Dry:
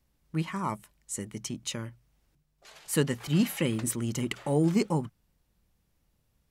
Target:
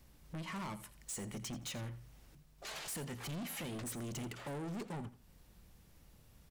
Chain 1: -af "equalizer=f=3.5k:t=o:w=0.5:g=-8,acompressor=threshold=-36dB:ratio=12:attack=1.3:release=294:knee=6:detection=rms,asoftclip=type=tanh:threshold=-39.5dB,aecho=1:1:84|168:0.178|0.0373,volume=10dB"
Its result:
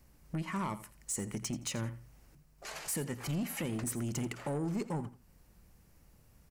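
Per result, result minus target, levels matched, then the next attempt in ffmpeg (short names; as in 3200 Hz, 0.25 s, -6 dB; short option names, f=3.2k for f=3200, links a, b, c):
soft clip: distortion -9 dB; 4000 Hz band -5.0 dB
-af "equalizer=f=3.5k:t=o:w=0.5:g=-8,acompressor=threshold=-36dB:ratio=12:attack=1.3:release=294:knee=6:detection=rms,asoftclip=type=tanh:threshold=-50dB,aecho=1:1:84|168:0.178|0.0373,volume=10dB"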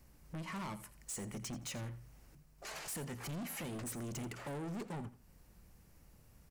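4000 Hz band -2.5 dB
-af "acompressor=threshold=-36dB:ratio=12:attack=1.3:release=294:knee=6:detection=rms,asoftclip=type=tanh:threshold=-50dB,aecho=1:1:84|168:0.178|0.0373,volume=10dB"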